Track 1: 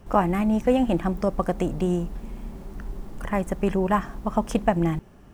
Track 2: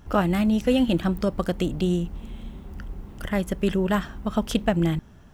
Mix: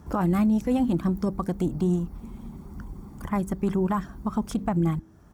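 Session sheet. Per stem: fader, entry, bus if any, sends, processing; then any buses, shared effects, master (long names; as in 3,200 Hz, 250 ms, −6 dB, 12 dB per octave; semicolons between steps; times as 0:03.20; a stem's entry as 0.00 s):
−5.0 dB, 0.00 s, no send, reverb reduction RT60 0.6 s; comb filter 0.9 ms, depth 87%; hum removal 64.44 Hz, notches 7
+1.0 dB, 0.5 ms, no send, pitch vibrato 5.1 Hz 11 cents; automatic ducking −7 dB, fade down 0.90 s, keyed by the first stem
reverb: not used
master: high-pass filter 56 Hz 12 dB per octave; parametric band 2,900 Hz −10.5 dB 1 octave; brickwall limiter −16 dBFS, peak gain reduction 11 dB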